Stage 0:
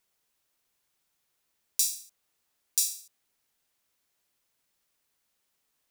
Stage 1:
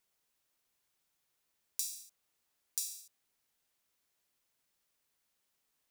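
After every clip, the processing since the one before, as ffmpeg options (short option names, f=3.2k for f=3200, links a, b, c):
-af "acompressor=threshold=-30dB:ratio=4,volume=-3.5dB"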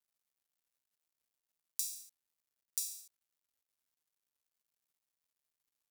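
-af "acrusher=bits=11:mix=0:aa=0.000001,highshelf=f=5.5k:g=4.5,volume=-3.5dB"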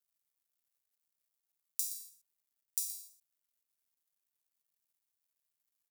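-filter_complex "[0:a]crystalizer=i=1:c=0,asplit=2[a][b];[b]aecho=0:1:122:0.251[c];[a][c]amix=inputs=2:normalize=0,volume=-5dB"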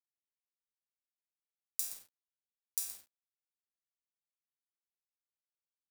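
-af "acrusher=bits=9:mix=0:aa=0.000001,aeval=exprs='sgn(val(0))*max(abs(val(0))-0.00447,0)':c=same"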